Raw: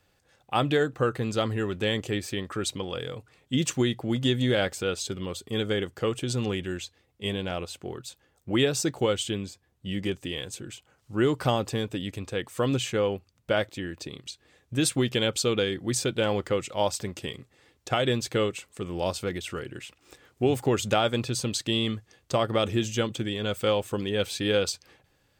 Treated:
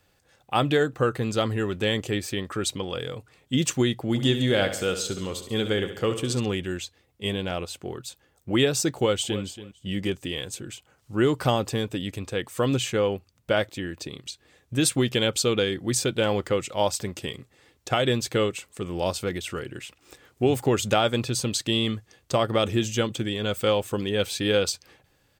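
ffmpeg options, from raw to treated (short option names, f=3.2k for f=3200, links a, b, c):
-filter_complex "[0:a]asplit=3[a][b][c];[a]afade=t=out:st=4.13:d=0.02[d];[b]aecho=1:1:69|138|207|276|345|414:0.299|0.161|0.0871|0.047|0.0254|0.0137,afade=t=in:st=4.13:d=0.02,afade=t=out:st=6.39:d=0.02[e];[c]afade=t=in:st=6.39:d=0.02[f];[d][e][f]amix=inputs=3:normalize=0,asplit=2[g][h];[h]afade=t=in:st=8.94:d=0.01,afade=t=out:st=9.43:d=0.01,aecho=0:1:280|560:0.211349|0.0317023[i];[g][i]amix=inputs=2:normalize=0,highshelf=f=10k:g=4,volume=2dB"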